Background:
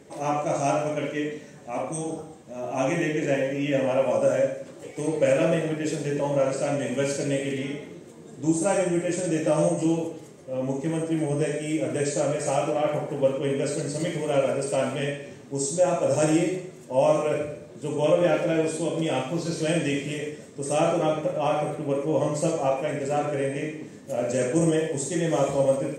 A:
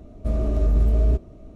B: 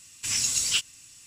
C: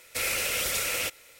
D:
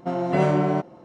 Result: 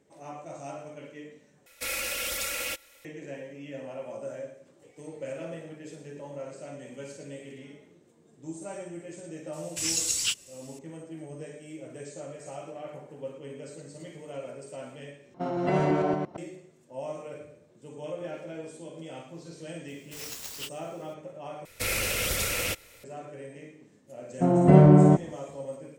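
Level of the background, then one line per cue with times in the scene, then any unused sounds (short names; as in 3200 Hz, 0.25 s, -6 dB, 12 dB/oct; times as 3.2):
background -16 dB
1.66 replace with C -5 dB + comb 3.6 ms, depth 62%
9.53 add B -4 dB + high shelf 8800 Hz +5 dB
15.34 replace with D -5.5 dB + reverse delay 0.114 s, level -2.5 dB
19.88 add B -13.5 dB + clock jitter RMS 0.024 ms
21.65 replace with C -1 dB + low shelf 310 Hz +12 dB
24.35 add D -2 dB, fades 0.10 s + tilt -4 dB/oct
not used: A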